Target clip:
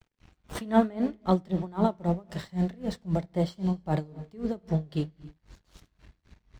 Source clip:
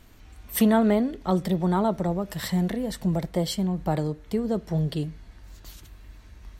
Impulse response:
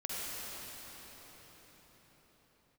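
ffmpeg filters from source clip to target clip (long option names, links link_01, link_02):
-filter_complex "[0:a]acrossover=split=7600[link_01][link_02];[link_02]acrusher=samples=19:mix=1:aa=0.000001:lfo=1:lforange=11.4:lforate=2.8[link_03];[link_01][link_03]amix=inputs=2:normalize=0,aeval=exprs='sgn(val(0))*max(abs(val(0))-0.00376,0)':channel_layout=same,flanger=delay=7.2:depth=7:regen=-82:speed=0.76:shape=sinusoidal,asplit=2[link_04][link_05];[link_05]equalizer=frequency=140:width=0.77:gain=9.5[link_06];[1:a]atrim=start_sample=2205,afade=type=out:start_time=0.35:duration=0.01,atrim=end_sample=15876[link_07];[link_06][link_07]afir=irnorm=-1:irlink=0,volume=-18dB[link_08];[link_04][link_08]amix=inputs=2:normalize=0,aeval=exprs='val(0)*pow(10,-24*(0.5-0.5*cos(2*PI*3.8*n/s))/20)':channel_layout=same,volume=5dB"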